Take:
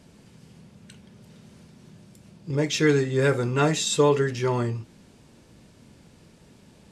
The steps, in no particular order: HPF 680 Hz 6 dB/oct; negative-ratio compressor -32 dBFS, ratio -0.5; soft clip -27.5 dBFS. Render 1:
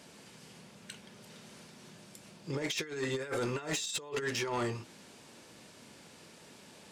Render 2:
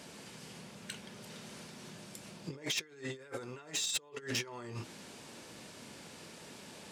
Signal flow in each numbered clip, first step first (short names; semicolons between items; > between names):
HPF > negative-ratio compressor > soft clip; negative-ratio compressor > HPF > soft clip